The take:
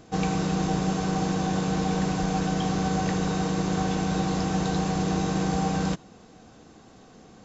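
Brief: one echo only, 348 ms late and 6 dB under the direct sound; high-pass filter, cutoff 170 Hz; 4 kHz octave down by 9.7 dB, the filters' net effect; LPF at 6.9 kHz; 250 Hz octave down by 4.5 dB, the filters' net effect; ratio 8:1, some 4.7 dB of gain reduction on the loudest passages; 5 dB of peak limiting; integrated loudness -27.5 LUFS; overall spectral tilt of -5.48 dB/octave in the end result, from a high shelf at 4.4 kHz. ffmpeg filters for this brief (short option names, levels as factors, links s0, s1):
-af "highpass=170,lowpass=6900,equalizer=f=250:t=o:g=-4,equalizer=f=4000:t=o:g=-8.5,highshelf=f=4400:g=-6.5,acompressor=threshold=0.0316:ratio=8,alimiter=level_in=1.5:limit=0.0631:level=0:latency=1,volume=0.668,aecho=1:1:348:0.501,volume=2.99"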